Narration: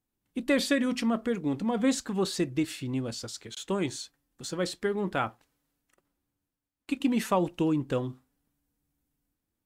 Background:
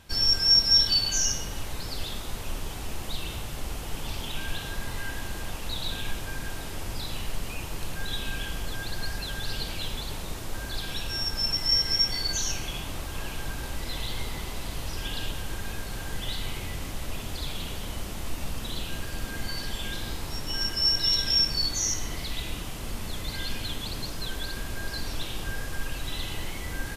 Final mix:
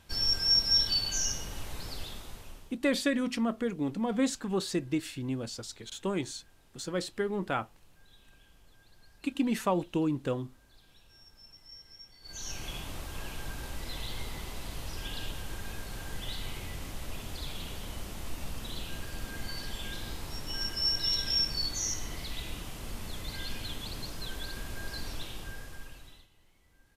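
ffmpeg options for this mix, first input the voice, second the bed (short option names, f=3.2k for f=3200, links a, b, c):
-filter_complex "[0:a]adelay=2350,volume=-2.5dB[a];[1:a]volume=16.5dB,afade=t=out:st=1.88:d=0.9:silence=0.0794328,afade=t=in:st=12.21:d=0.48:silence=0.0794328,afade=t=out:st=25.06:d=1.22:silence=0.0473151[b];[a][b]amix=inputs=2:normalize=0"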